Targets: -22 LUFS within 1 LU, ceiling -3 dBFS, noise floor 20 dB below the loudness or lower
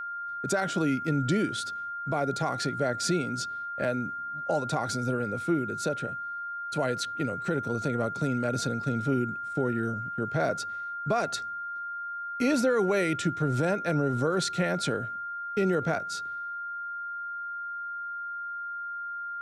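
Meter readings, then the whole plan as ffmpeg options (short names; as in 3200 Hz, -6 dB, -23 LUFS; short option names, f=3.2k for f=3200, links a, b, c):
steady tone 1400 Hz; tone level -33 dBFS; loudness -30.0 LUFS; peak -16.0 dBFS; loudness target -22.0 LUFS
-> -af "bandreject=f=1.4k:w=30"
-af "volume=8dB"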